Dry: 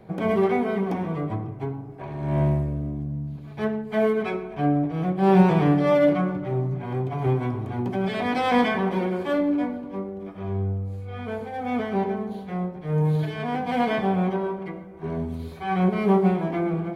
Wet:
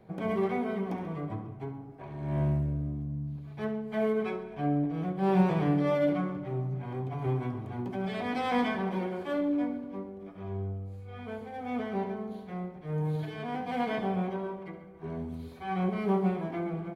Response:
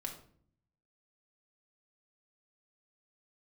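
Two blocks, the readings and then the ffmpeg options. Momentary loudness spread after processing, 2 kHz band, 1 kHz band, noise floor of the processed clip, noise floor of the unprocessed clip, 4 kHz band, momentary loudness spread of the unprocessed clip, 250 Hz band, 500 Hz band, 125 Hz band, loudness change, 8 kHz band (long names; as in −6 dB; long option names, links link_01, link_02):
13 LU, −8.0 dB, −8.0 dB, −46 dBFS, −39 dBFS, −7.5 dB, 13 LU, −7.0 dB, −8.0 dB, −7.0 dB, −7.5 dB, can't be measured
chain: -af "aecho=1:1:69|138|207|276|345|414:0.224|0.132|0.0779|0.046|0.0271|0.016,volume=-8dB"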